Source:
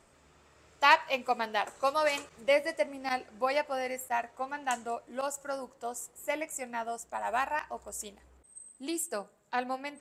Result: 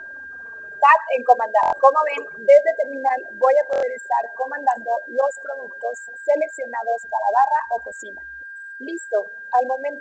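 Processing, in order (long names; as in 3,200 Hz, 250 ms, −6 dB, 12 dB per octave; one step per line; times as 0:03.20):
spectral envelope exaggerated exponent 3
parametric band 720 Hz +13 dB 2.6 octaves
flanger 0.61 Hz, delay 3.1 ms, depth 2 ms, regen +5%
steady tone 1,600 Hz −38 dBFS
buffer that repeats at 0:01.61/0:03.71, samples 1,024, times 4
level +4.5 dB
A-law companding 128 kbit/s 16,000 Hz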